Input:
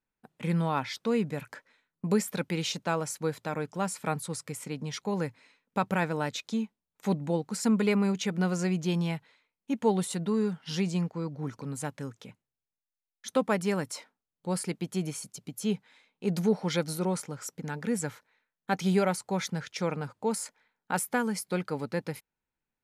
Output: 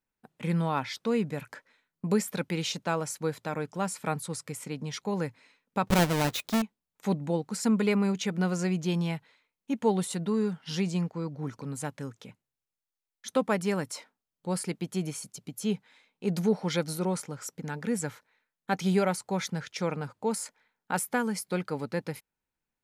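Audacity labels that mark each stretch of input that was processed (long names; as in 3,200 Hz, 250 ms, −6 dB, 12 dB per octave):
5.870000	6.620000	each half-wave held at its own peak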